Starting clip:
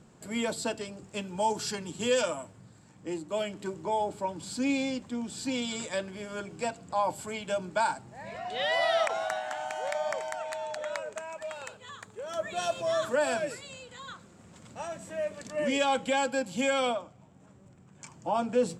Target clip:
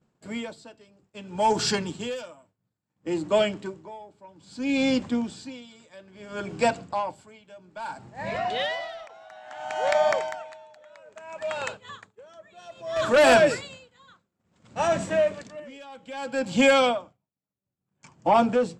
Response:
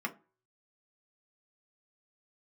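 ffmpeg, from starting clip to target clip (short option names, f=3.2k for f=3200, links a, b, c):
-filter_complex "[0:a]lowpass=5.9k,agate=range=-33dB:threshold=-42dB:ratio=3:detection=peak,asettb=1/sr,asplit=3[a][b][c];[a]atrim=end=12.964[d];[b]atrim=start=12.96:end=15.6,asetpts=PTS-STARTPTS,afade=t=in:d=0.004:c=qsin,afade=t=out:st=2.636:d=0.004:c=qsin,acontrast=36[e];[c]atrim=start=15.596[f];[d][e]acrossfade=d=0.004:c1=hsin:c2=qsin[g];[g][f]acrossfade=d=0.004:c1=qsin:c2=hsin,aeval=exprs='0.282*(cos(1*acos(clip(val(0)/0.282,-1,1)))-cos(1*PI/2))+0.0794*(cos(5*acos(clip(val(0)/0.282,-1,1)))-cos(5*PI/2))':c=same,aeval=exprs='val(0)*pow(10,-27*(0.5-0.5*cos(2*PI*0.6*n/s))/20)':c=same,volume=3.5dB"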